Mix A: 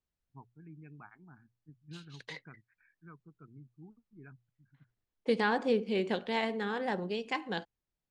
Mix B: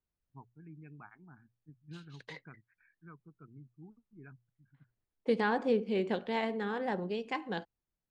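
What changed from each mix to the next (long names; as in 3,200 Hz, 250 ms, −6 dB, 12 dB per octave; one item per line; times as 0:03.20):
second voice: add high-shelf EQ 2,300 Hz −7 dB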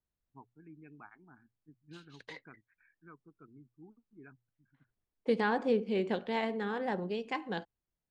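first voice: add low shelf with overshoot 210 Hz −6 dB, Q 1.5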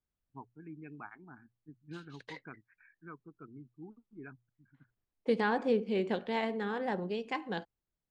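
first voice +6.0 dB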